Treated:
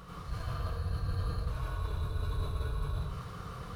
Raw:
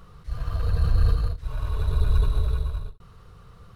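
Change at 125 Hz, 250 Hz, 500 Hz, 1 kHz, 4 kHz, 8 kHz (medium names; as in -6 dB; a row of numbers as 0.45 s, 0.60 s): -8.5 dB, -4.0 dB, -5.0 dB, -1.0 dB, -4.5 dB, no reading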